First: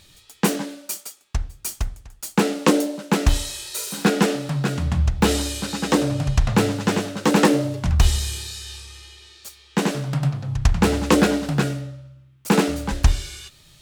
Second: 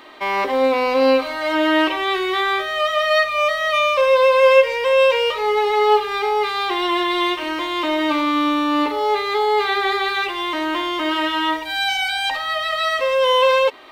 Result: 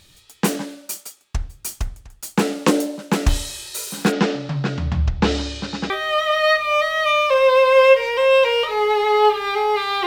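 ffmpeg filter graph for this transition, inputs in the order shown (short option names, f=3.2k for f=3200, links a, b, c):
-filter_complex "[0:a]asplit=3[a][b][c];[a]afade=t=out:st=4.11:d=0.02[d];[b]lowpass=f=5.6k:w=0.5412,lowpass=f=5.6k:w=1.3066,afade=t=in:st=4.11:d=0.02,afade=t=out:st=5.9:d=0.02[e];[c]afade=t=in:st=5.9:d=0.02[f];[d][e][f]amix=inputs=3:normalize=0,apad=whole_dur=10.06,atrim=end=10.06,atrim=end=5.902[g];[1:a]atrim=start=2.568:end=6.73[h];[g][h]acrossfade=d=0.004:c1=hsin:c2=hsin"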